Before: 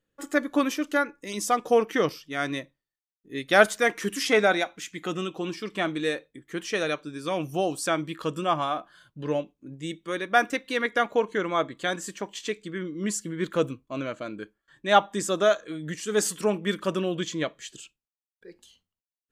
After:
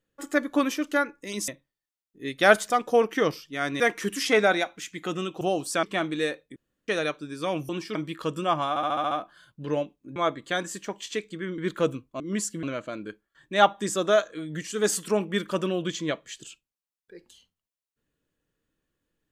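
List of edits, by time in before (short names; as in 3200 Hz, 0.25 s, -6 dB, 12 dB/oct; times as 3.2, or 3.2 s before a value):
1.48–2.58 move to 3.8
5.41–5.67 swap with 7.53–7.95
6.4–6.72 room tone
8.69 stutter 0.07 s, 7 plays
9.74–11.49 cut
12.91–13.34 move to 13.96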